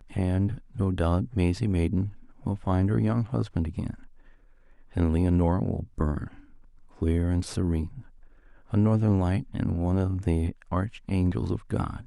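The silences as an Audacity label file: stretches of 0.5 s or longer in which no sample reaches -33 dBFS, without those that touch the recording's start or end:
3.940000	4.960000	silence
6.270000	7.020000	silence
7.980000	8.730000	silence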